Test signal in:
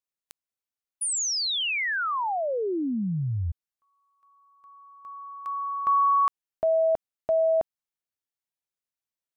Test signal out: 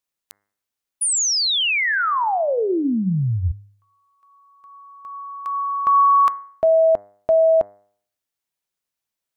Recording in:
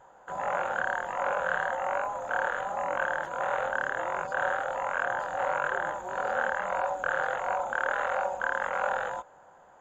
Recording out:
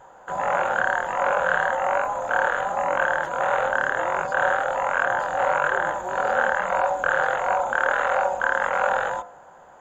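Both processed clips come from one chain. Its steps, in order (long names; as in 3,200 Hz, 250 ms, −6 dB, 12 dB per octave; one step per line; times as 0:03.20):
hum removal 101.3 Hz, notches 21
level +7.5 dB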